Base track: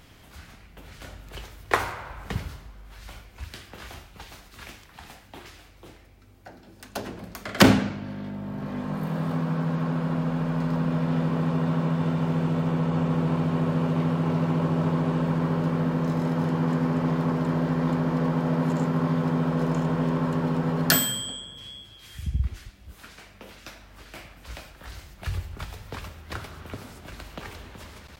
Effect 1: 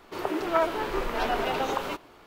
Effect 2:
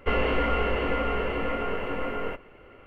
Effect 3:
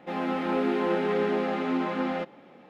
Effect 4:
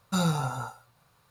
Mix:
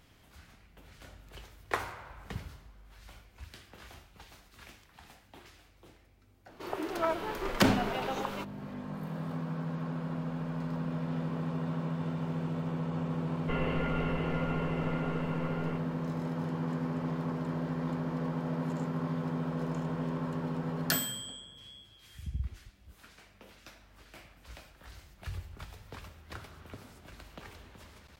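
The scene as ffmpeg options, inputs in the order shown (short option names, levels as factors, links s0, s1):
-filter_complex "[0:a]volume=0.335[s0];[1:a]atrim=end=2.26,asetpts=PTS-STARTPTS,volume=0.473,afade=t=in:d=0.004:c=hsin,afade=t=out:st=2.256:d=0.004:c=hsin,adelay=6480[s1];[2:a]atrim=end=2.86,asetpts=PTS-STARTPTS,volume=0.316,afade=t=in:d=0.004:c=hsin,afade=t=out:st=2.856:d=0.004:c=hsin,adelay=13420[s2];[s0][s1][s2]amix=inputs=3:normalize=0"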